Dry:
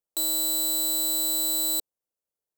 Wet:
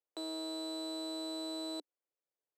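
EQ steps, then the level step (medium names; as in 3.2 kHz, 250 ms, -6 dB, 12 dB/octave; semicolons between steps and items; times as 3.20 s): elliptic high-pass 290 Hz; tape spacing loss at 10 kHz 31 dB; 0.0 dB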